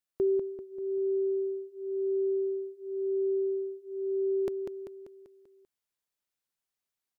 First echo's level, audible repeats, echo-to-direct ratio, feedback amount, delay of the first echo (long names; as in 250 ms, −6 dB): −6.0 dB, 5, −4.5 dB, 51%, 195 ms